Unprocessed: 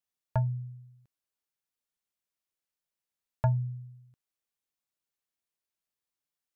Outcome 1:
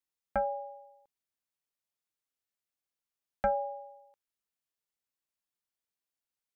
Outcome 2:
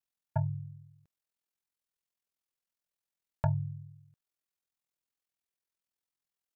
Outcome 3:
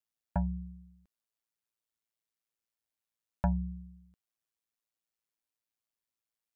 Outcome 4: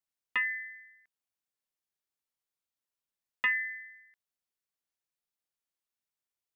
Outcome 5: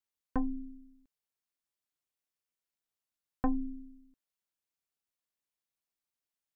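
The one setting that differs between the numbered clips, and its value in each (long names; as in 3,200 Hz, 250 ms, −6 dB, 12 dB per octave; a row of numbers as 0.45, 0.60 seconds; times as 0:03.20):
ring modulation, frequency: 690, 21, 56, 1,900, 140 Hertz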